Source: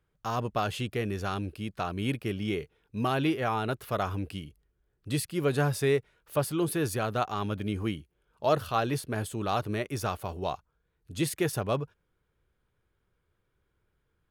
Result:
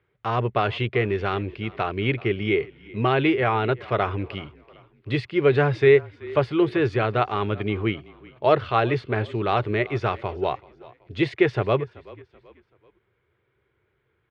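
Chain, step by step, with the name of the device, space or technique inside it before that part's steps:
frequency-shifting delay pedal into a guitar cabinet (echo with shifted repeats 381 ms, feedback 40%, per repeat −32 Hz, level −21 dB; loudspeaker in its box 91–3,600 Hz, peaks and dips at 120 Hz +5 dB, 170 Hz −8 dB, 260 Hz −5 dB, 390 Hz +7 dB, 2,100 Hz +8 dB)
level +6 dB

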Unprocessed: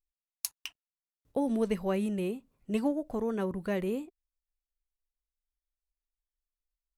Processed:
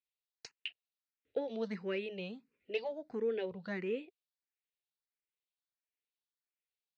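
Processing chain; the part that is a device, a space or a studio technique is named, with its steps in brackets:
meter weighting curve D
barber-pole phaser into a guitar amplifier (frequency shifter mixed with the dry sound +1.5 Hz; soft clipping −22.5 dBFS, distortion −15 dB; loudspeaker in its box 81–4,200 Hz, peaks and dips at 290 Hz −3 dB, 460 Hz +7 dB, 1,100 Hz −6 dB, 3,200 Hz −4 dB)
level −4 dB

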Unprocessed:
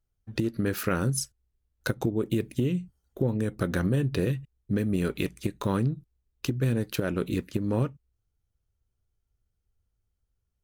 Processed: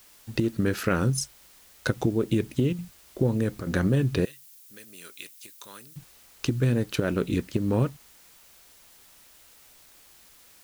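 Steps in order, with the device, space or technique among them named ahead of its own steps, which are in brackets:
worn cassette (low-pass filter 9,100 Hz; tape wow and flutter; tape dropouts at 0:02.73/0:03.61/0:05.33, 54 ms −11 dB; white noise bed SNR 27 dB)
0:04.25–0:05.96: first difference
level +2.5 dB

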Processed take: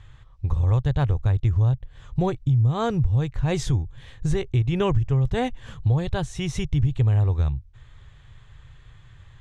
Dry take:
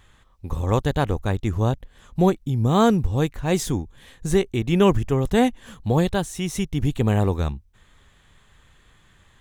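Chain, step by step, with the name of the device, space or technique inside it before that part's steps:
jukebox (low-pass filter 5,700 Hz 12 dB per octave; low shelf with overshoot 160 Hz +8 dB, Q 3; downward compressor 4 to 1, threshold −19 dBFS, peak gain reduction 12 dB)

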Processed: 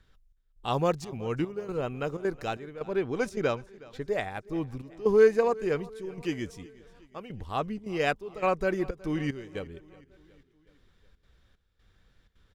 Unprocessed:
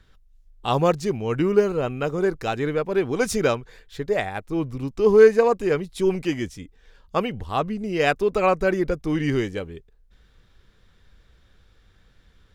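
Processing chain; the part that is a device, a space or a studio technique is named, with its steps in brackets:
0:02.84–0:04.08: high-shelf EQ 7,600 Hz −8.5 dB
trance gate with a delay (gate pattern "xxxx...xxxxxx." 187 BPM −12 dB; repeating echo 368 ms, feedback 56%, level −21.5 dB)
level −6.5 dB

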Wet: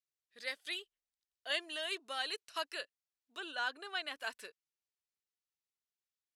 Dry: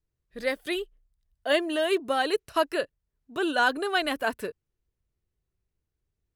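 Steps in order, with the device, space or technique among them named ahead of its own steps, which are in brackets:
0:03.40–0:04.20: high-shelf EQ 3,300 Hz −10 dB
piezo pickup straight into a mixer (low-pass filter 5,300 Hz 12 dB per octave; first difference)
level +2.5 dB

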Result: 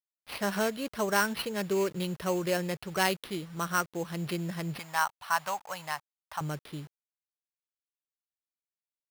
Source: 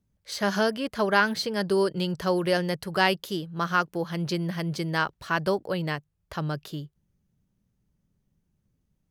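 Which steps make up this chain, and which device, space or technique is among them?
early 8-bit sampler (sample-rate reduction 7,100 Hz, jitter 0%; bit reduction 8 bits)
0:04.79–0:06.41: low shelf with overshoot 570 Hz −13.5 dB, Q 3
level −5 dB

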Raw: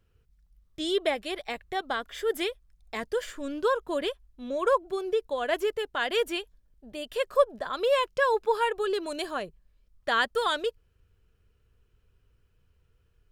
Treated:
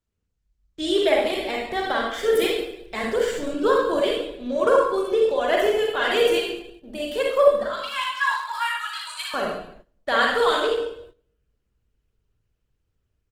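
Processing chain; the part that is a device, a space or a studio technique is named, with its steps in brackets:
0:07.63–0:09.34: Butterworth high-pass 1,000 Hz 48 dB per octave
speakerphone in a meeting room (convolution reverb RT60 0.75 s, pre-delay 34 ms, DRR −1.5 dB; far-end echo of a speakerphone 100 ms, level −28 dB; automatic gain control gain up to 6 dB; noise gate −43 dBFS, range −14 dB; level −2.5 dB; Opus 16 kbit/s 48,000 Hz)

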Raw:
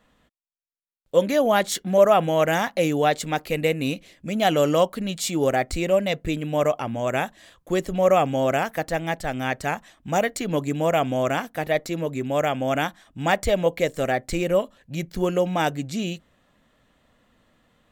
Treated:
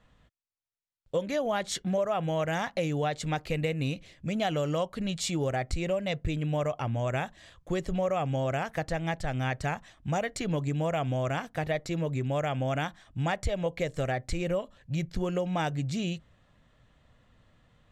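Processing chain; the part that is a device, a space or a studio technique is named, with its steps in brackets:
jukebox (low-pass filter 7,600 Hz 12 dB per octave; low shelf with overshoot 170 Hz +7.5 dB, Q 1.5; downward compressor 5 to 1, threshold −23 dBFS, peak gain reduction 11.5 dB)
level −3 dB

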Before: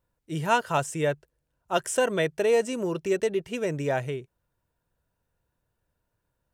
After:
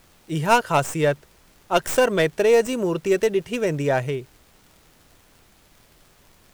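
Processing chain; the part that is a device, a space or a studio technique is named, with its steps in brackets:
record under a worn stylus (stylus tracing distortion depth 0.096 ms; surface crackle; pink noise bed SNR 32 dB)
level +5.5 dB

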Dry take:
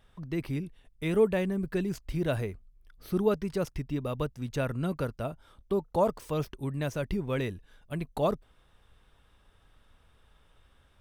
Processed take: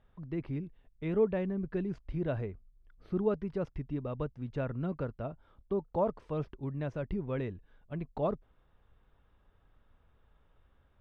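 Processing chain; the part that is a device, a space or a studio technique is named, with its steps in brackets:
phone in a pocket (low-pass filter 3,600 Hz 12 dB per octave; high-shelf EQ 2,200 Hz −11.5 dB)
level −3.5 dB

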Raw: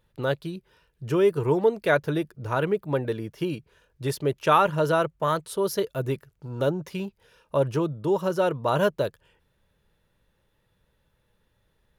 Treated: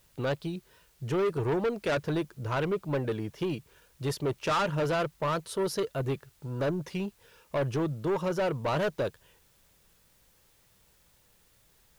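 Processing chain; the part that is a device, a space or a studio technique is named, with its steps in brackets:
compact cassette (soft clipping −24 dBFS, distortion −8 dB; low-pass filter 9,200 Hz; tape wow and flutter; white noise bed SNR 34 dB)

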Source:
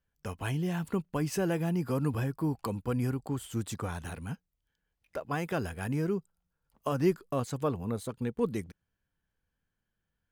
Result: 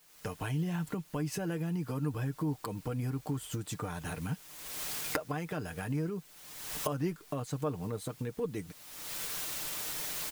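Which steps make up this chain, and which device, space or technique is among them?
cheap recorder with automatic gain (white noise bed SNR 25 dB; camcorder AGC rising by 41 dB per second)
comb filter 6.6 ms, depth 50%
level −7 dB

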